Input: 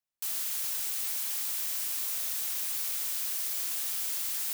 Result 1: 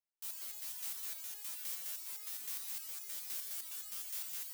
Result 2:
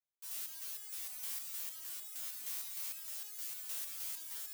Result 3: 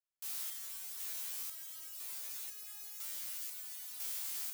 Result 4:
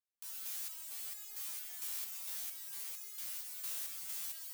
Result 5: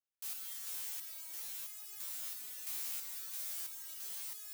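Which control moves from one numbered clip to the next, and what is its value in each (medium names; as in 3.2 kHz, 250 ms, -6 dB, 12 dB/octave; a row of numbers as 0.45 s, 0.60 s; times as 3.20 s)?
resonator arpeggio, rate: 9.7 Hz, 6.5 Hz, 2 Hz, 4.4 Hz, 3 Hz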